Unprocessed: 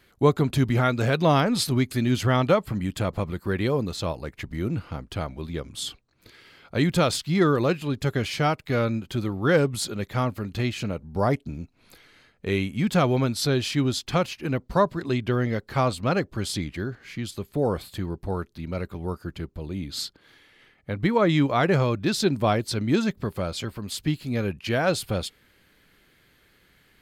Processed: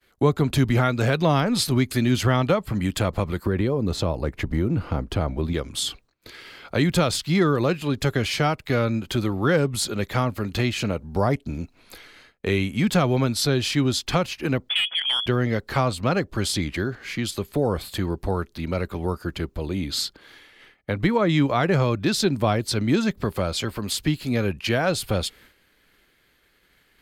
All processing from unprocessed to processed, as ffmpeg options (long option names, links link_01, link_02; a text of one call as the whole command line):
ffmpeg -i in.wav -filter_complex "[0:a]asettb=1/sr,asplit=3[link_01][link_02][link_03];[link_01]atrim=end=3.464[link_04];[link_02]atrim=start=3.46:end=5.53,asetpts=PTS-STARTPTS,afade=type=in:duration=0.004:curve=qsin,afade=type=out:start_time=2.066:duration=0.004:curve=qsin,tiltshelf=frequency=1100:gain=5.5,acompressor=threshold=-22dB:ratio=4:attack=3.2:release=140:knee=1:detection=peak[link_05];[link_03]atrim=start=5.526[link_06];[link_04][link_05]acrossfade=duration=0.004:curve1=hsin:curve2=qsin[link_07];[link_07][link_06]acrossfade=duration=0.004:curve1=qsin:curve2=hsin,asettb=1/sr,asplit=3[link_08][link_09][link_10];[link_08]atrim=end=14.694[link_11];[link_09]atrim=start=14.69:end=15.26,asetpts=PTS-STARTPTS,afade=type=in:duration=0.004:curve=qsin,afade=type=out:start_time=0.566:duration=0.004:curve=qsin,lowpass=frequency=3000:width_type=q:width=0.5098,lowpass=frequency=3000:width_type=q:width=0.6013,lowpass=frequency=3000:width_type=q:width=0.9,lowpass=frequency=3000:width_type=q:width=2.563,afreqshift=-3500,asplit=2[link_12][link_13];[link_13]highpass=frequency=720:poles=1,volume=16dB,asoftclip=type=tanh:threshold=-7dB[link_14];[link_12][link_14]amix=inputs=2:normalize=0,lowpass=frequency=1700:poles=1,volume=-6dB,acompressor=threshold=-24dB:ratio=2:attack=3.2:release=140:knee=1:detection=peak[link_15];[link_10]atrim=start=15.256[link_16];[link_11][link_15]acrossfade=duration=0.004:curve1=hsin:curve2=qsin[link_17];[link_17][link_16]acrossfade=duration=0.004:curve1=qsin:curve2=hsin,agate=range=-33dB:threshold=-52dB:ratio=3:detection=peak,equalizer=frequency=130:width_type=o:width=1.8:gain=-6.5,acrossover=split=190[link_18][link_19];[link_19]acompressor=threshold=-35dB:ratio=2[link_20];[link_18][link_20]amix=inputs=2:normalize=0,volume=9dB" out.wav